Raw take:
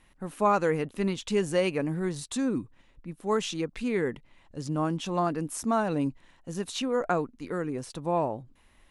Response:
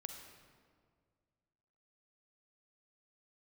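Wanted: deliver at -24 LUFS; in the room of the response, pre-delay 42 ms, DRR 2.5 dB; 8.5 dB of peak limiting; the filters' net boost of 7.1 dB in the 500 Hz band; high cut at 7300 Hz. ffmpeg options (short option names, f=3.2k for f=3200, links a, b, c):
-filter_complex "[0:a]lowpass=7.3k,equalizer=f=500:t=o:g=8.5,alimiter=limit=-15.5dB:level=0:latency=1,asplit=2[a][b];[1:a]atrim=start_sample=2205,adelay=42[c];[b][c]afir=irnorm=-1:irlink=0,volume=1dB[d];[a][d]amix=inputs=2:normalize=0,volume=1.5dB"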